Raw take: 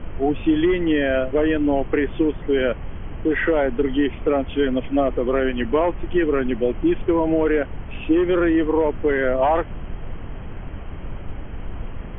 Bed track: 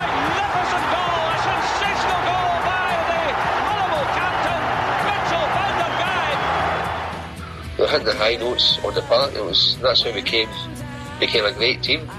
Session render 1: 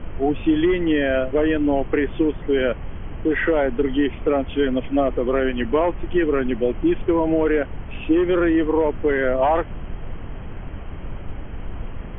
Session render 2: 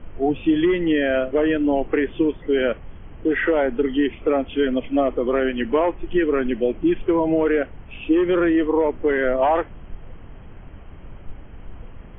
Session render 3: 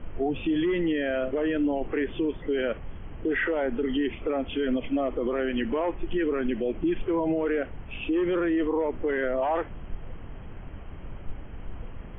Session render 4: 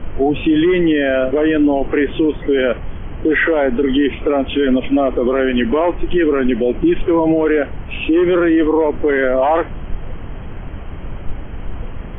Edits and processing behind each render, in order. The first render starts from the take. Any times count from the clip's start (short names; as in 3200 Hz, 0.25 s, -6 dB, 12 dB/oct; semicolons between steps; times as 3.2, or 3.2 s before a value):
nothing audible
noise print and reduce 8 dB
limiter -19 dBFS, peak gain reduction 10.5 dB
gain +12 dB